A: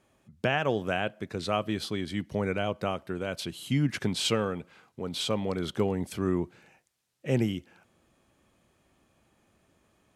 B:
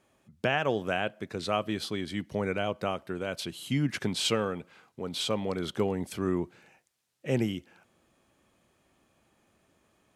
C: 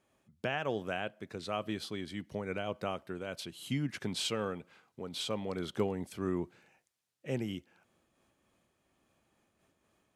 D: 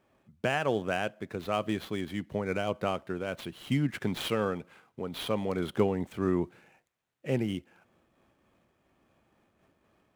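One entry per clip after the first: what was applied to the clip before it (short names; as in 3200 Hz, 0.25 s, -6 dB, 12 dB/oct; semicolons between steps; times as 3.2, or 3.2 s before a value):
low shelf 150 Hz -5 dB
noise-modulated level, depth 55%; gain -3 dB
median filter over 9 samples; gain +6 dB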